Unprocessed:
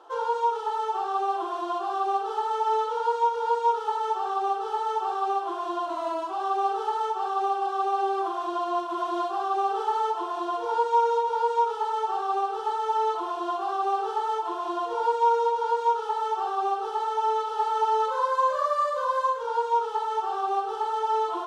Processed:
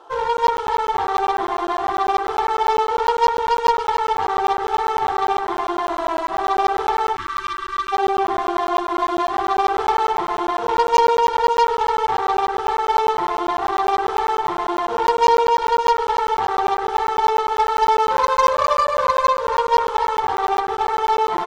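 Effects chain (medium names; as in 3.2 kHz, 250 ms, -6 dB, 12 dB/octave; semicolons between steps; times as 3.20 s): Chebyshev shaper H 6 -17 dB, 8 -16 dB, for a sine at -12 dBFS; on a send: feedback delay 280 ms, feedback 55%, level -10 dB; on the sum: spectral selection erased 7.16–7.92 s, 380–890 Hz; crackling interface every 0.10 s, samples 512, zero, from 0.37 s; trim +6 dB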